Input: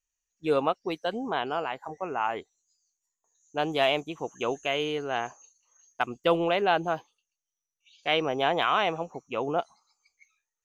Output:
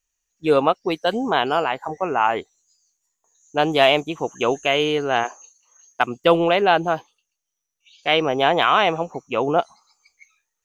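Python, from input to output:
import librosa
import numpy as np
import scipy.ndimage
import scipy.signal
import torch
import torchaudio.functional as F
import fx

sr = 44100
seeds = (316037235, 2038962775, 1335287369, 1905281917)

p1 = fx.high_shelf(x, sr, hz=6100.0, db=9.5, at=(1.07, 1.64))
p2 = fx.rider(p1, sr, range_db=10, speed_s=2.0)
p3 = p1 + (p2 * librosa.db_to_amplitude(1.5))
p4 = fx.highpass(p3, sr, hz=fx.line((5.23, 320.0), (6.2, 79.0)), slope=24, at=(5.23, 6.2), fade=0.02)
y = p4 * librosa.db_to_amplitude(1.5)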